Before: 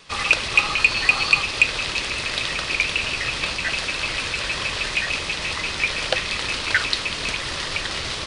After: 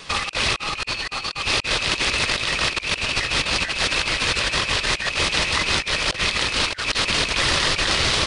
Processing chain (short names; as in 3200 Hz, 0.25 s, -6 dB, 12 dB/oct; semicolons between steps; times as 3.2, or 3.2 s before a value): negative-ratio compressor -28 dBFS, ratio -0.5; gain +5 dB